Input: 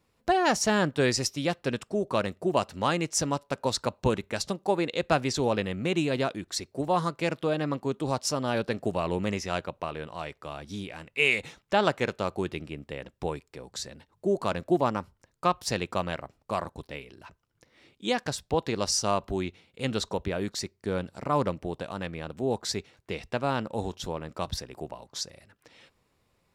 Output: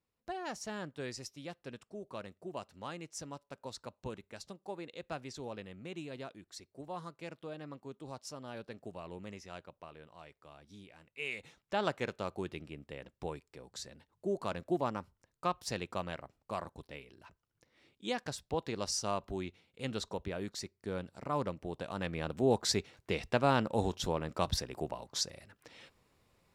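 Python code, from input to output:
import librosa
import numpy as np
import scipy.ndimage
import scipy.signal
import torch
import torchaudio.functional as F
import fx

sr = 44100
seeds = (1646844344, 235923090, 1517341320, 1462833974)

y = fx.gain(x, sr, db=fx.line((11.18, -17.0), (11.87, -8.5), (21.57, -8.5), (22.24, 0.0)))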